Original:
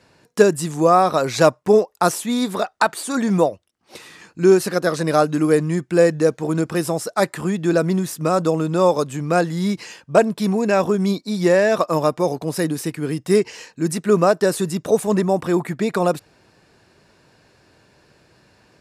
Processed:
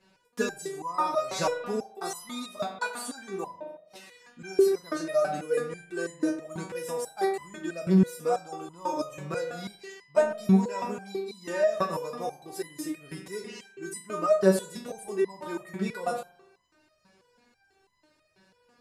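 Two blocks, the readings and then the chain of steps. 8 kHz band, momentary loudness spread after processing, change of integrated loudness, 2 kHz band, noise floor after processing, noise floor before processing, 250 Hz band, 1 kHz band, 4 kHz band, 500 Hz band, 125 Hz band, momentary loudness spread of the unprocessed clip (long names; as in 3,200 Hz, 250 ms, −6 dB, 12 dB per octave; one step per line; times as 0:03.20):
−10.5 dB, 16 LU, −10.5 dB, −11.0 dB, −69 dBFS, −59 dBFS, −10.5 dB, −11.0 dB, −10.5 dB, −11.0 dB, −10.5 dB, 7 LU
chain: spring reverb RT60 1 s, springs 41 ms, chirp 60 ms, DRR 6 dB
step-sequenced resonator 6.1 Hz 190–1,000 Hz
level +4 dB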